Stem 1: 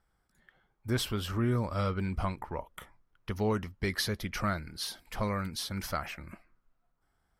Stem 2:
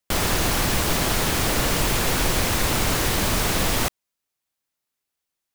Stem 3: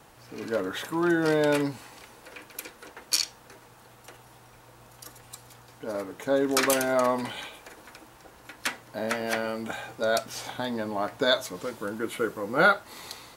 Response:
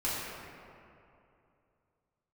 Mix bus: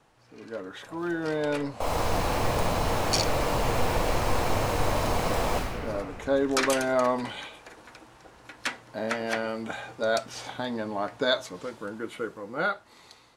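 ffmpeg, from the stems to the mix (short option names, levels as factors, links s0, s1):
-filter_complex "[0:a]acompressor=threshold=0.02:ratio=6,aeval=exprs='0.0141*sin(PI/2*1.58*val(0)/0.0141)':c=same,flanger=delay=16:depth=6.2:speed=0.86,volume=0.794,asplit=2[s0][s1];[s1]volume=0.119[s2];[1:a]adelay=1700,volume=1.12,asplit=2[s3][s4];[s4]volume=0.106[s5];[2:a]lowpass=9900,dynaudnorm=f=390:g=11:m=1.68,volume=0.376[s6];[s0][s3]amix=inputs=2:normalize=0,asuperpass=centerf=700:order=12:qfactor=1.1,acompressor=threshold=0.0224:ratio=2.5,volume=1[s7];[3:a]atrim=start_sample=2205[s8];[s2][s5]amix=inputs=2:normalize=0[s9];[s9][s8]afir=irnorm=-1:irlink=0[s10];[s6][s7][s10]amix=inputs=3:normalize=0,highshelf=f=8900:g=-7,dynaudnorm=f=190:g=13:m=1.58"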